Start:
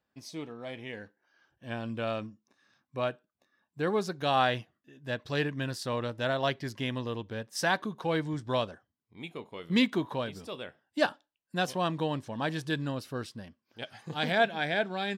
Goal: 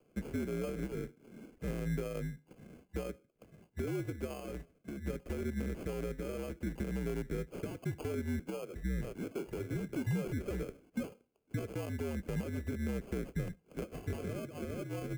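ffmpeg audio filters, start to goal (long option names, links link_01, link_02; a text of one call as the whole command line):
ffmpeg -i in.wav -filter_complex "[0:a]equalizer=frequency=1500:width=0.43:gain=3.5,asettb=1/sr,asplit=3[link_01][link_02][link_03];[link_01]atrim=end=8.394[link_04];[link_02]atrim=start=8.39:end=10.63,asetpts=PTS-STARTPTS,afade=type=in:duration=0.004:curve=qsin,afade=type=out:start_time=2.236:duration=0.004:curve=qsin,acrossover=split=260|3200[link_05][link_06][link_07];[link_05]adelay=360[link_08];[link_07]adelay=480[link_09];[link_08][link_06][link_09]amix=inputs=3:normalize=0,atrim=end_sample=98784[link_10];[link_03]atrim=start=10.626[link_11];[link_04][link_10]acrossfade=duration=0.004:curve1=hsin:curve2=qsin[link_12];[link_12][link_11]acrossfade=duration=0.004:curve1=qsin:curve2=hsin,acompressor=threshold=-39dB:ratio=8,asuperstop=centerf=5300:order=20:qfactor=2.2,alimiter=level_in=12.5dB:limit=-24dB:level=0:latency=1:release=15,volume=-12.5dB,acrossover=split=260[link_13][link_14];[link_14]acompressor=threshold=-57dB:ratio=2[link_15];[link_13][link_15]amix=inputs=2:normalize=0,acrusher=samples=23:mix=1:aa=0.000001,equalizer=frequency=250:width_type=o:width=1:gain=4,equalizer=frequency=500:width_type=o:width=1:gain=10,equalizer=frequency=1000:width_type=o:width=1:gain=-10,equalizer=frequency=2000:width_type=o:width=1:gain=6,equalizer=frequency=4000:width_type=o:width=1:gain=-8,afreqshift=-64,volume=8dB" out.wav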